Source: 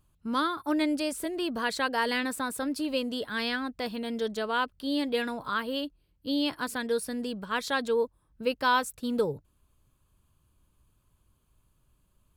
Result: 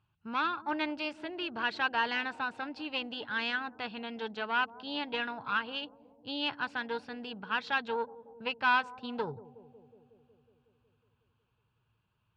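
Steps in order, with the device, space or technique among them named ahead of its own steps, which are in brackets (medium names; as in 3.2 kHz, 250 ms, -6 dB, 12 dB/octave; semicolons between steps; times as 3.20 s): analogue delay pedal into a guitar amplifier (bucket-brigade echo 183 ms, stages 1024, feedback 71%, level -16 dB; valve stage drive 18 dB, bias 0.7; cabinet simulation 94–4500 Hz, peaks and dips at 110 Hz +8 dB, 270 Hz -7 dB, 530 Hz -7 dB, 850 Hz +8 dB, 1.5 kHz +8 dB, 2.7 kHz +9 dB); trim -2.5 dB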